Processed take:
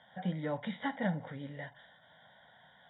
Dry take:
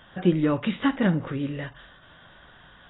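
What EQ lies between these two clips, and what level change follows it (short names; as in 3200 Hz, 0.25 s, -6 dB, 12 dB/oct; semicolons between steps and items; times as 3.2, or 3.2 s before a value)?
speaker cabinet 230–3300 Hz, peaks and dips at 250 Hz -4 dB, 360 Hz -4 dB, 560 Hz -4 dB, 1000 Hz -3 dB, 1600 Hz -8 dB, 2400 Hz -6 dB; fixed phaser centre 1800 Hz, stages 8; -1.5 dB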